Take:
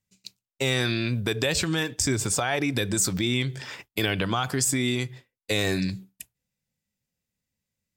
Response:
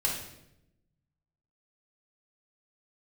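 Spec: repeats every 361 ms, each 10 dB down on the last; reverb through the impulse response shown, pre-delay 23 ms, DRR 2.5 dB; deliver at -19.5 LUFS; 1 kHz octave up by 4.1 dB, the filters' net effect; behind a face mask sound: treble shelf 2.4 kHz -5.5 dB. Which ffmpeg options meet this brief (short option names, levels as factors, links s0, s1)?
-filter_complex "[0:a]equalizer=f=1000:t=o:g=7,aecho=1:1:361|722|1083|1444:0.316|0.101|0.0324|0.0104,asplit=2[s0][s1];[1:a]atrim=start_sample=2205,adelay=23[s2];[s1][s2]afir=irnorm=-1:irlink=0,volume=0.335[s3];[s0][s3]amix=inputs=2:normalize=0,highshelf=f=2400:g=-5.5,volume=1.68"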